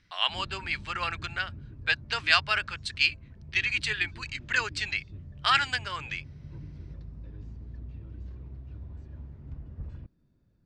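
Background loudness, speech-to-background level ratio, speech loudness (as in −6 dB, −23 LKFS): −45.5 LKFS, 17.0 dB, −28.5 LKFS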